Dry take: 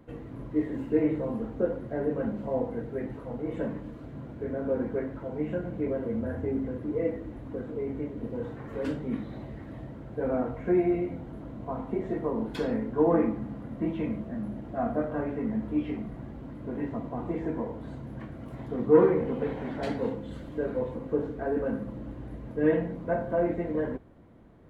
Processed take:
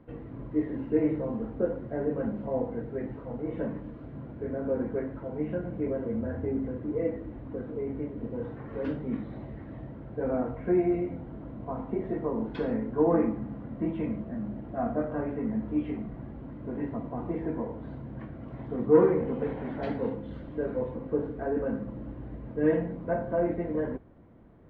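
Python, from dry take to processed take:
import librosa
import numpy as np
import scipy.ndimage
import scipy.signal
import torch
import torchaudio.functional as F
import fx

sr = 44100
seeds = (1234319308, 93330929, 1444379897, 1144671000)

y = fx.air_absorb(x, sr, metres=280.0)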